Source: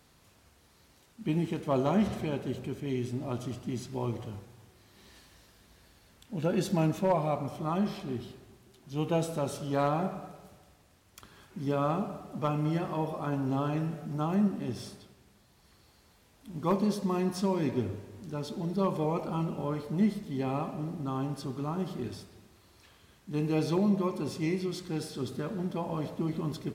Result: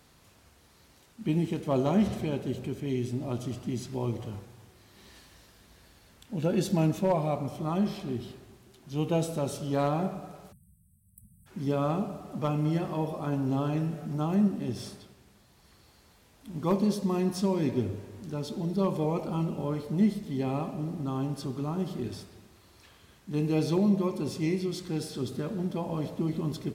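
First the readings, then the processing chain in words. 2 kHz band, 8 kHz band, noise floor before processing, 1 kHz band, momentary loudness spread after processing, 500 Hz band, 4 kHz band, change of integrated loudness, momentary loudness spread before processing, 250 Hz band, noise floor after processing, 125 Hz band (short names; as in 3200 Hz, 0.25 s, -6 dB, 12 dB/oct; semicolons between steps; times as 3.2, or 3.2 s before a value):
-1.0 dB, +2.0 dB, -63 dBFS, -1.0 dB, 10 LU, +1.0 dB, +1.5 dB, +1.5 dB, 10 LU, +2.0 dB, -60 dBFS, +2.5 dB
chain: spectral delete 10.52–11.47, 220–7900 Hz; dynamic EQ 1300 Hz, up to -5 dB, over -47 dBFS, Q 0.73; gain +2.5 dB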